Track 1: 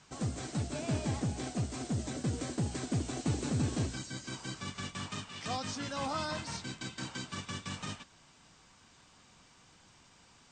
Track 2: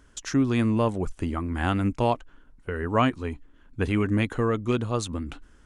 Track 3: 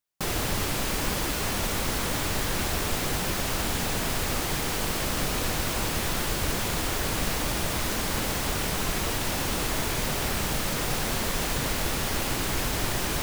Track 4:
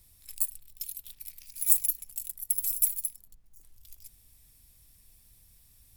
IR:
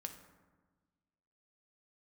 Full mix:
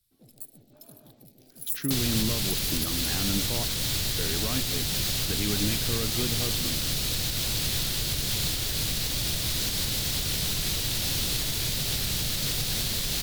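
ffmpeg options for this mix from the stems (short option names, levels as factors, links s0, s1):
-filter_complex "[0:a]afwtdn=0.0141,highpass=f=530:p=1,volume=0.224,asplit=2[s0][s1];[s1]volume=0.355[s2];[1:a]adelay=1500,volume=0.531[s3];[2:a]adelay=1700,volume=1[s4];[3:a]volume=0.355,afade=t=in:st=1.36:d=0.61:silence=0.334965,asplit=2[s5][s6];[s6]volume=0.1[s7];[s4][s5]amix=inputs=2:normalize=0,acrossover=split=130|3000[s8][s9][s10];[s9]acompressor=threshold=0.02:ratio=6[s11];[s8][s11][s10]amix=inputs=3:normalize=0,alimiter=limit=0.0841:level=0:latency=1:release=169,volume=1[s12];[s0][s3]amix=inputs=2:normalize=0,highpass=140,lowpass=3300,alimiter=limit=0.0708:level=0:latency=1,volume=1[s13];[s2][s7]amix=inputs=2:normalize=0,aecho=0:1:122:1[s14];[s12][s13][s14]amix=inputs=3:normalize=0,equalizer=f=125:t=o:w=1:g=7,equalizer=f=1000:t=o:w=1:g=-6,equalizer=f=4000:t=o:w=1:g=10,equalizer=f=16000:t=o:w=1:g=6"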